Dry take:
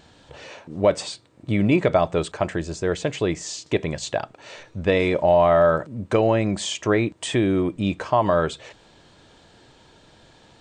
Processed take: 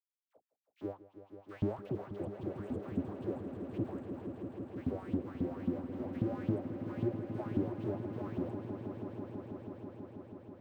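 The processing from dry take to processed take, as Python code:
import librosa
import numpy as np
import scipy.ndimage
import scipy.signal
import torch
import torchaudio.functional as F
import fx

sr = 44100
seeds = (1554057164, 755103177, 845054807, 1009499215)

y = scipy.signal.sosfilt(scipy.signal.cheby2(4, 80, [510.0, 4500.0], 'bandstop', fs=sr, output='sos'), x)
y = fx.backlash(y, sr, play_db=-40.5)
y = fx.dispersion(y, sr, late='lows', ms=64.0, hz=910.0)
y = fx.filter_lfo_highpass(y, sr, shape='saw_up', hz=3.7, low_hz=220.0, high_hz=3400.0, q=5.1)
y = fx.echo_swell(y, sr, ms=162, loudest=5, wet_db=-11)
y = y * librosa.db_to_amplitude(14.0)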